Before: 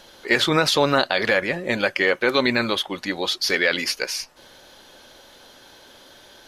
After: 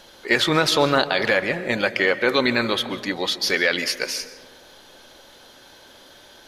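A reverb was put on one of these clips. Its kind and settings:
comb and all-pass reverb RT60 1.7 s, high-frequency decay 0.35×, pre-delay 100 ms, DRR 13 dB

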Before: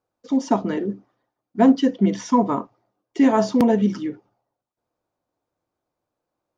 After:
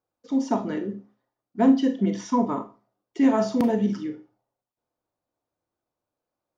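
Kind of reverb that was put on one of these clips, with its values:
four-comb reverb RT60 0.32 s, combs from 26 ms, DRR 7.5 dB
level −5.5 dB

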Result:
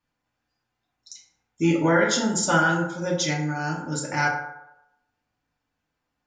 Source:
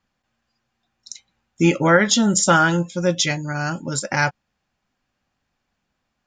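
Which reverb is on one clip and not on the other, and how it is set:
feedback delay network reverb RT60 0.87 s, low-frequency decay 0.75×, high-frequency decay 0.45×, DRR −3.5 dB
level −9.5 dB

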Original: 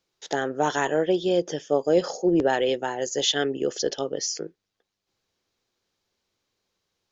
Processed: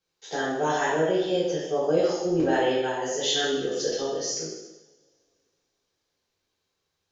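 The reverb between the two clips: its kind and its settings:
coupled-rooms reverb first 0.93 s, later 2.8 s, from −27 dB, DRR −9 dB
level −10 dB

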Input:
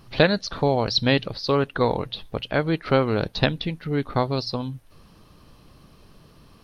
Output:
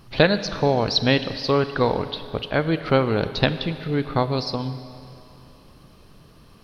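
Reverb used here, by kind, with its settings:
four-comb reverb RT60 2.8 s, combs from 31 ms, DRR 11.5 dB
level +1 dB

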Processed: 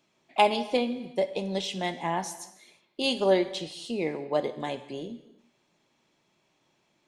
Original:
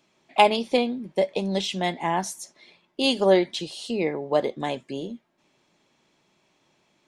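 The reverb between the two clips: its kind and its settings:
reverb whose tail is shaped and stops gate 380 ms falling, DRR 11 dB
level −4.5 dB

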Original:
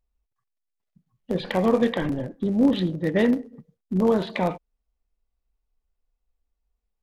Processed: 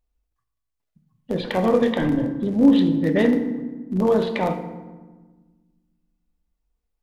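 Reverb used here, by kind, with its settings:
feedback delay network reverb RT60 1.3 s, low-frequency decay 1.6×, high-frequency decay 0.6×, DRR 6.5 dB
level +1 dB

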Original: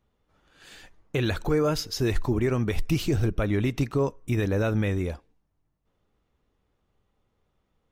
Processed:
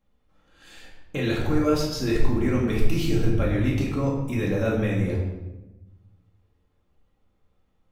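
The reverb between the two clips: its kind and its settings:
rectangular room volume 490 cubic metres, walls mixed, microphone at 2.2 metres
level −4.5 dB

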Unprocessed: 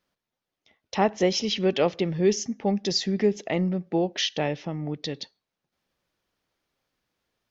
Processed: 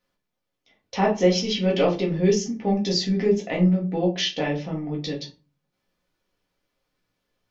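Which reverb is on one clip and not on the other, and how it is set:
rectangular room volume 120 cubic metres, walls furnished, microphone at 1.9 metres
level −3 dB

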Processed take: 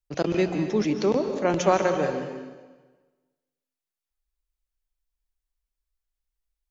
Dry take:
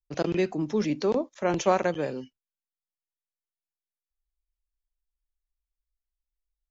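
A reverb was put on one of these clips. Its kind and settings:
dense smooth reverb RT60 1.3 s, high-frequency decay 0.9×, pre-delay 120 ms, DRR 6.5 dB
level +2 dB

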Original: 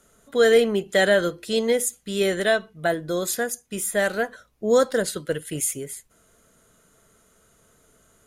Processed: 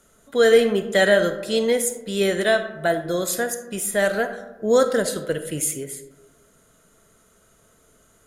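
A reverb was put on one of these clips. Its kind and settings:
comb and all-pass reverb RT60 1.2 s, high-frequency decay 0.35×, pre-delay 5 ms, DRR 9 dB
level +1 dB

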